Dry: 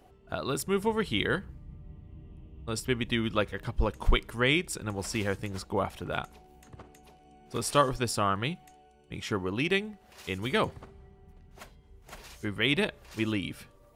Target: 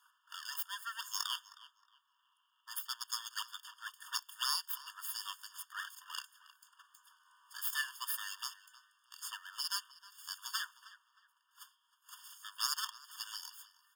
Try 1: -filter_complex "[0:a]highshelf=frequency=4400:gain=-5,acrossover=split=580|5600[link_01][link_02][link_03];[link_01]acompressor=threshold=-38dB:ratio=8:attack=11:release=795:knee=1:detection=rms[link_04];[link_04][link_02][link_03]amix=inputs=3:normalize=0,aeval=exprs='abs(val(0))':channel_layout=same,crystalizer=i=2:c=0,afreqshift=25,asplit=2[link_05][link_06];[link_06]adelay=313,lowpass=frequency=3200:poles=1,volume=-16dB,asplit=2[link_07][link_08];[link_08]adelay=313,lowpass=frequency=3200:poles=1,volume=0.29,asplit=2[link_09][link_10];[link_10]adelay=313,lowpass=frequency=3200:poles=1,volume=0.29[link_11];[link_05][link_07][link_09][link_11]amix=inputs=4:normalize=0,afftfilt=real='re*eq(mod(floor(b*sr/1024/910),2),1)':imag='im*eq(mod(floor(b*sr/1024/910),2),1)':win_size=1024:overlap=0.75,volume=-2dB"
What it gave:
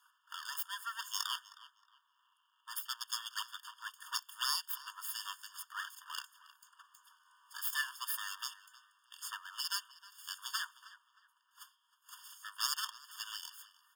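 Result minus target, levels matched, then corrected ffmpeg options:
downward compressor: peak gain reduction −9 dB
-filter_complex "[0:a]highshelf=frequency=4400:gain=-5,acrossover=split=580|5600[link_01][link_02][link_03];[link_01]acompressor=threshold=-48.5dB:ratio=8:attack=11:release=795:knee=1:detection=rms[link_04];[link_04][link_02][link_03]amix=inputs=3:normalize=0,aeval=exprs='abs(val(0))':channel_layout=same,crystalizer=i=2:c=0,afreqshift=25,asplit=2[link_05][link_06];[link_06]adelay=313,lowpass=frequency=3200:poles=1,volume=-16dB,asplit=2[link_07][link_08];[link_08]adelay=313,lowpass=frequency=3200:poles=1,volume=0.29,asplit=2[link_09][link_10];[link_10]adelay=313,lowpass=frequency=3200:poles=1,volume=0.29[link_11];[link_05][link_07][link_09][link_11]amix=inputs=4:normalize=0,afftfilt=real='re*eq(mod(floor(b*sr/1024/910),2),1)':imag='im*eq(mod(floor(b*sr/1024/910),2),1)':win_size=1024:overlap=0.75,volume=-2dB"

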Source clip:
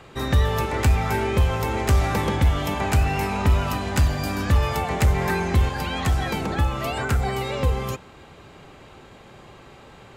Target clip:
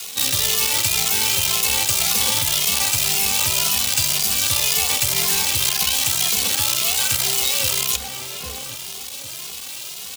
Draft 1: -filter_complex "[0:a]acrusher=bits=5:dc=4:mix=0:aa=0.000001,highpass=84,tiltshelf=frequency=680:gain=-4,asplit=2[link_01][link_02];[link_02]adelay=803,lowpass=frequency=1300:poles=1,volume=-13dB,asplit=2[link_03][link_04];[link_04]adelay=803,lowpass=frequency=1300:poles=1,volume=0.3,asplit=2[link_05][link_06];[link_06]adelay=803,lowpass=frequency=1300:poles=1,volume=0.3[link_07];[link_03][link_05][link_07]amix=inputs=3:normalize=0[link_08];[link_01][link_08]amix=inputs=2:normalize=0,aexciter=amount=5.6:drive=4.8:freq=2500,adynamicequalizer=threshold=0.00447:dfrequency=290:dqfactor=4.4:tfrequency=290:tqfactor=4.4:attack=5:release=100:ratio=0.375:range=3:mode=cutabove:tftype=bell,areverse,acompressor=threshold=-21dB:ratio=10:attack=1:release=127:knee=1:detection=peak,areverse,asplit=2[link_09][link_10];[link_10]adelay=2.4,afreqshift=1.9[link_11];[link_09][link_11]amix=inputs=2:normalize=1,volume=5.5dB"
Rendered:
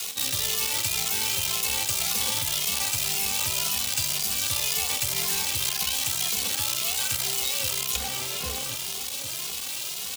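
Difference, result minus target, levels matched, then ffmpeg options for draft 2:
downward compressor: peak gain reduction +7 dB
-filter_complex "[0:a]acrusher=bits=5:dc=4:mix=0:aa=0.000001,highpass=84,tiltshelf=frequency=680:gain=-4,asplit=2[link_01][link_02];[link_02]adelay=803,lowpass=frequency=1300:poles=1,volume=-13dB,asplit=2[link_03][link_04];[link_04]adelay=803,lowpass=frequency=1300:poles=1,volume=0.3,asplit=2[link_05][link_06];[link_06]adelay=803,lowpass=frequency=1300:poles=1,volume=0.3[link_07];[link_03][link_05][link_07]amix=inputs=3:normalize=0[link_08];[link_01][link_08]amix=inputs=2:normalize=0,aexciter=amount=5.6:drive=4.8:freq=2500,adynamicequalizer=threshold=0.00447:dfrequency=290:dqfactor=4.4:tfrequency=290:tqfactor=4.4:attack=5:release=100:ratio=0.375:range=3:mode=cutabove:tftype=bell,areverse,acompressor=threshold=-13dB:ratio=10:attack=1:release=127:knee=1:detection=peak,areverse,asplit=2[link_09][link_10];[link_10]adelay=2.4,afreqshift=1.9[link_11];[link_09][link_11]amix=inputs=2:normalize=1,volume=5.5dB"

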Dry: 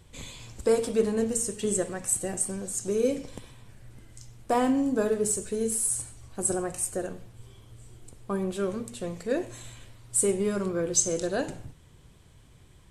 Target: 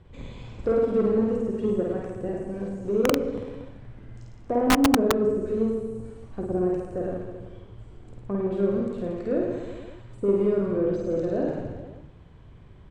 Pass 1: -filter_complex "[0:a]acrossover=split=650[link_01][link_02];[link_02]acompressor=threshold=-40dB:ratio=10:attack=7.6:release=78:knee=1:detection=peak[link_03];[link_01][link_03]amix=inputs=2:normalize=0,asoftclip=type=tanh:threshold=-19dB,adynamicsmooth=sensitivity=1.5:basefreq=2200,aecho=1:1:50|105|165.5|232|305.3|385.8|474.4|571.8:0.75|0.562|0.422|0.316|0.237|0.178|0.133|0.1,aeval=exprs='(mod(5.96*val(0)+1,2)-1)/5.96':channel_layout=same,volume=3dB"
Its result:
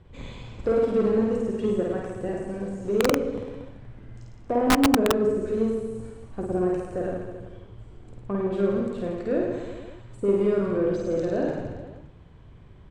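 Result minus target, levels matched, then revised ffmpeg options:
downward compressor: peak gain reduction −6.5 dB
-filter_complex "[0:a]acrossover=split=650[link_01][link_02];[link_02]acompressor=threshold=-47dB:ratio=10:attack=7.6:release=78:knee=1:detection=peak[link_03];[link_01][link_03]amix=inputs=2:normalize=0,asoftclip=type=tanh:threshold=-19dB,adynamicsmooth=sensitivity=1.5:basefreq=2200,aecho=1:1:50|105|165.5|232|305.3|385.8|474.4|571.8:0.75|0.562|0.422|0.316|0.237|0.178|0.133|0.1,aeval=exprs='(mod(5.96*val(0)+1,2)-1)/5.96':channel_layout=same,volume=3dB"

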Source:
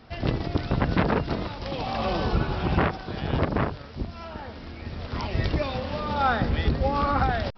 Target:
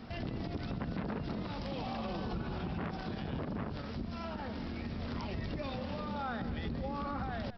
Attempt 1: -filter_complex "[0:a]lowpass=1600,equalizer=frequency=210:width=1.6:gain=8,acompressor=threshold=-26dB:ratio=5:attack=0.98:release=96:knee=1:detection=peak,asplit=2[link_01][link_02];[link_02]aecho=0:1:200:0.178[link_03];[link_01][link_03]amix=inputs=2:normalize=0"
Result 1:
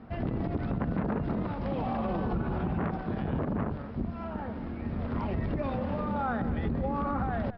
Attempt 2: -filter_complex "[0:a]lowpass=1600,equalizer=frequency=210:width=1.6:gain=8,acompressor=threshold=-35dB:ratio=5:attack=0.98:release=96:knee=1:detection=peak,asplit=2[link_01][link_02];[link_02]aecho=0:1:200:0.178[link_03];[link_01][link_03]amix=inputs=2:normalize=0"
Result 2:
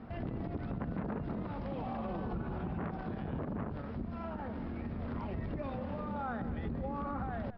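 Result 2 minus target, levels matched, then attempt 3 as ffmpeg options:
2,000 Hz band −3.5 dB
-filter_complex "[0:a]equalizer=frequency=210:width=1.6:gain=8,acompressor=threshold=-35dB:ratio=5:attack=0.98:release=96:knee=1:detection=peak,asplit=2[link_01][link_02];[link_02]aecho=0:1:200:0.178[link_03];[link_01][link_03]amix=inputs=2:normalize=0"

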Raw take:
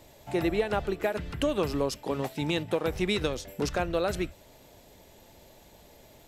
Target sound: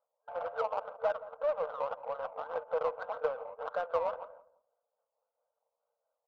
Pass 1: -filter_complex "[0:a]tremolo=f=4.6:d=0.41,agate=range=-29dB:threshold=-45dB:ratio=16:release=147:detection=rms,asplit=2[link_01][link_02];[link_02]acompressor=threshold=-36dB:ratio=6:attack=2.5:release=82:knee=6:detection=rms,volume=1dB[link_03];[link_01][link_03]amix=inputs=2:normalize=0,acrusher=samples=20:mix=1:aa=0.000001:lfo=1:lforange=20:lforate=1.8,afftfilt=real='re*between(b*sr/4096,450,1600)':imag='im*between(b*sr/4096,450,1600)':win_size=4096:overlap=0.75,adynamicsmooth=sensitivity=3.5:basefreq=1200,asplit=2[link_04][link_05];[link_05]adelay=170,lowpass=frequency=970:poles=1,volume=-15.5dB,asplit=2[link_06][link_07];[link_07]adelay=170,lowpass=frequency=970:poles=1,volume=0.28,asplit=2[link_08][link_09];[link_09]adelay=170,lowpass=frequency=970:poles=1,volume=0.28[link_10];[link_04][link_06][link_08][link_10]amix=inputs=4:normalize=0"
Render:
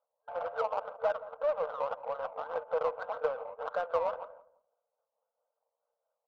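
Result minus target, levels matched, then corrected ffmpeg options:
downward compressor: peak gain reduction −6 dB
-filter_complex "[0:a]tremolo=f=4.6:d=0.41,agate=range=-29dB:threshold=-45dB:ratio=16:release=147:detection=rms,asplit=2[link_01][link_02];[link_02]acompressor=threshold=-43.5dB:ratio=6:attack=2.5:release=82:knee=6:detection=rms,volume=1dB[link_03];[link_01][link_03]amix=inputs=2:normalize=0,acrusher=samples=20:mix=1:aa=0.000001:lfo=1:lforange=20:lforate=1.8,afftfilt=real='re*between(b*sr/4096,450,1600)':imag='im*between(b*sr/4096,450,1600)':win_size=4096:overlap=0.75,adynamicsmooth=sensitivity=3.5:basefreq=1200,asplit=2[link_04][link_05];[link_05]adelay=170,lowpass=frequency=970:poles=1,volume=-15.5dB,asplit=2[link_06][link_07];[link_07]adelay=170,lowpass=frequency=970:poles=1,volume=0.28,asplit=2[link_08][link_09];[link_09]adelay=170,lowpass=frequency=970:poles=1,volume=0.28[link_10];[link_04][link_06][link_08][link_10]amix=inputs=4:normalize=0"

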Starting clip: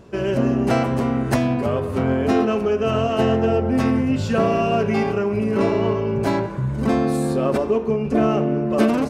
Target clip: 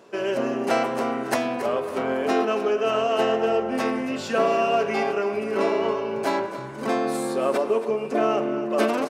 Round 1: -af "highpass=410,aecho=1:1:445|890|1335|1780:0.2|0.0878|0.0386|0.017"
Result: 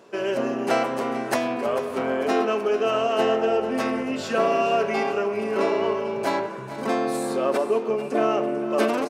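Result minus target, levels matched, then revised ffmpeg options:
echo 168 ms late
-af "highpass=410,aecho=1:1:277|554|831|1108:0.2|0.0878|0.0386|0.017"

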